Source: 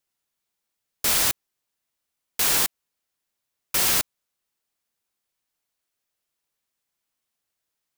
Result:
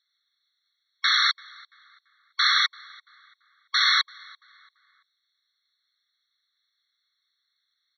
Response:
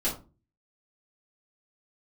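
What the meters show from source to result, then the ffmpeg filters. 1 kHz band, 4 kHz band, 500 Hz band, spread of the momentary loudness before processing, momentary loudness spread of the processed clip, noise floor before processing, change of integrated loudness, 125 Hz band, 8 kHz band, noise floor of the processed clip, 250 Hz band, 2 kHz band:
+5.5 dB, +6.5 dB, under -40 dB, 14 LU, 12 LU, -82 dBFS, -1.0 dB, under -40 dB, -16.5 dB, -78 dBFS, under -40 dB, +8.0 dB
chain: -filter_complex "[0:a]highshelf=f=2.8k:g=6.5,alimiter=limit=-8dB:level=0:latency=1:release=28,crystalizer=i=10:c=0,aeval=exprs='clip(val(0),-1,1)':c=same,aresample=11025,aresample=44100,asplit=2[a][b];[b]adelay=338,lowpass=f=3.1k:p=1,volume=-23dB,asplit=2[c][d];[d]adelay=338,lowpass=f=3.1k:p=1,volume=0.42,asplit=2[e][f];[f]adelay=338,lowpass=f=3.1k:p=1,volume=0.42[g];[a][c][e][g]amix=inputs=4:normalize=0,afftfilt=real='re*eq(mod(floor(b*sr/1024/1100),2),1)':imag='im*eq(mod(floor(b*sr/1024/1100),2),1)':win_size=1024:overlap=0.75,volume=-2.5dB"

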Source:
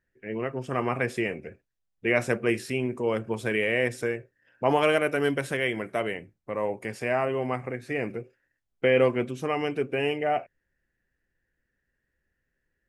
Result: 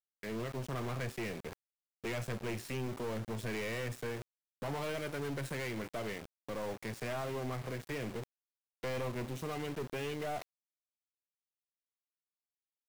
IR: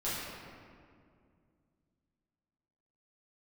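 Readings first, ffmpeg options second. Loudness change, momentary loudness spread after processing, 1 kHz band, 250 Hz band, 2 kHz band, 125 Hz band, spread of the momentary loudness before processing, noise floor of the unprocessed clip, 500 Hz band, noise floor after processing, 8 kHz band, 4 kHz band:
-12.0 dB, 7 LU, -12.5 dB, -10.5 dB, -13.5 dB, -5.0 dB, 10 LU, -80 dBFS, -13.5 dB, under -85 dBFS, -4.0 dB, -9.0 dB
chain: -filter_complex "[0:a]acrossover=split=150[a][b];[b]acompressor=threshold=-41dB:ratio=2[c];[a][c]amix=inputs=2:normalize=0,aeval=exprs='val(0)*gte(abs(val(0)),0.00562)':c=same,aeval=exprs='(tanh(79.4*val(0)+0.35)-tanh(0.35))/79.4':c=same,areverse,acompressor=mode=upward:threshold=-47dB:ratio=2.5,areverse,volume=3.5dB"

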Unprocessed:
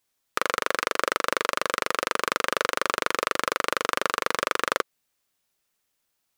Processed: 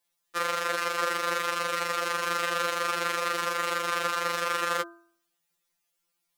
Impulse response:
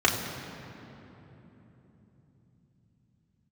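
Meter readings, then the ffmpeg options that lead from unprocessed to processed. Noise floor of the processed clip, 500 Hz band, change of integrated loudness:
-79 dBFS, -3.0 dB, -2.0 dB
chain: -af "bandreject=f=67.9:t=h:w=4,bandreject=f=135.8:t=h:w=4,bandreject=f=203.7:t=h:w=4,bandreject=f=271.6:t=h:w=4,bandreject=f=339.5:t=h:w=4,bandreject=f=407.4:t=h:w=4,bandreject=f=475.3:t=h:w=4,bandreject=f=543.2:t=h:w=4,bandreject=f=611.1:t=h:w=4,bandreject=f=679:t=h:w=4,bandreject=f=746.9:t=h:w=4,bandreject=f=814.8:t=h:w=4,bandreject=f=882.7:t=h:w=4,bandreject=f=950.6:t=h:w=4,bandreject=f=1.0185k:t=h:w=4,bandreject=f=1.0864k:t=h:w=4,bandreject=f=1.1543k:t=h:w=4,bandreject=f=1.2222k:t=h:w=4,bandreject=f=1.2901k:t=h:w=4,bandreject=f=1.358k:t=h:w=4,bandreject=f=1.4259k:t=h:w=4,bandreject=f=1.4938k:t=h:w=4,bandreject=f=1.5617k:t=h:w=4,bandreject=f=1.6296k:t=h:w=4,bandreject=f=1.6975k:t=h:w=4,bandreject=f=1.7654k:t=h:w=4,afftfilt=real='re*2.83*eq(mod(b,8),0)':imag='im*2.83*eq(mod(b,8),0)':win_size=2048:overlap=0.75"

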